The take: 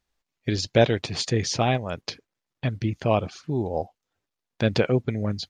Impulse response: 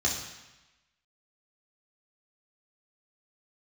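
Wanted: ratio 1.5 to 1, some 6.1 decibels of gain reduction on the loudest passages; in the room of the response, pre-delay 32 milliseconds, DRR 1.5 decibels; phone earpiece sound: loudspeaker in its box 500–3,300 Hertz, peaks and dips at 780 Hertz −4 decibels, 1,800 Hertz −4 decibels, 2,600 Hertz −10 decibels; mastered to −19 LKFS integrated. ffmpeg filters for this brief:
-filter_complex "[0:a]acompressor=threshold=-29dB:ratio=1.5,asplit=2[link_01][link_02];[1:a]atrim=start_sample=2205,adelay=32[link_03];[link_02][link_03]afir=irnorm=-1:irlink=0,volume=-10.5dB[link_04];[link_01][link_04]amix=inputs=2:normalize=0,highpass=500,equalizer=frequency=780:width_type=q:width=4:gain=-4,equalizer=frequency=1800:width_type=q:width=4:gain=-4,equalizer=frequency=2600:width_type=q:width=4:gain=-10,lowpass=frequency=3300:width=0.5412,lowpass=frequency=3300:width=1.3066,volume=14.5dB"

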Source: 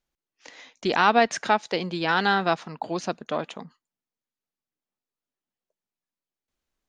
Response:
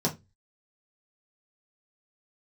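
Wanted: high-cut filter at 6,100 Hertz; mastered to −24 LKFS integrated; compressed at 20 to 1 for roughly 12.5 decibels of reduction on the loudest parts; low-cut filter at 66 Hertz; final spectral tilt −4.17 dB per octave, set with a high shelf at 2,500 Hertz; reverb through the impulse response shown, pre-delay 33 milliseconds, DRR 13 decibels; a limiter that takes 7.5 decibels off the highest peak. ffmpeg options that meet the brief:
-filter_complex "[0:a]highpass=66,lowpass=6100,highshelf=frequency=2500:gain=6,acompressor=threshold=-24dB:ratio=20,alimiter=limit=-17.5dB:level=0:latency=1,asplit=2[link_01][link_02];[1:a]atrim=start_sample=2205,adelay=33[link_03];[link_02][link_03]afir=irnorm=-1:irlink=0,volume=-22dB[link_04];[link_01][link_04]amix=inputs=2:normalize=0,volume=8dB"

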